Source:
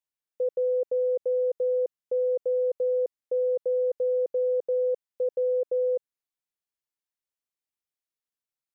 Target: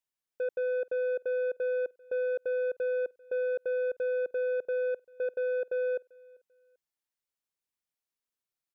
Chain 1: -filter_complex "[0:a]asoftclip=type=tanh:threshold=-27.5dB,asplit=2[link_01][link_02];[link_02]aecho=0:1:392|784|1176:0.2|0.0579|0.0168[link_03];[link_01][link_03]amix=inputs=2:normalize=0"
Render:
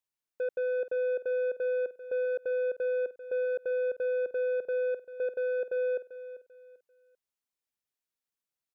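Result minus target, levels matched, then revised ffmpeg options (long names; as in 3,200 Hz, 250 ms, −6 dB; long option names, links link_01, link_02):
echo-to-direct +11.5 dB
-filter_complex "[0:a]asoftclip=type=tanh:threshold=-27.5dB,asplit=2[link_01][link_02];[link_02]aecho=0:1:392|784:0.0531|0.0154[link_03];[link_01][link_03]amix=inputs=2:normalize=0"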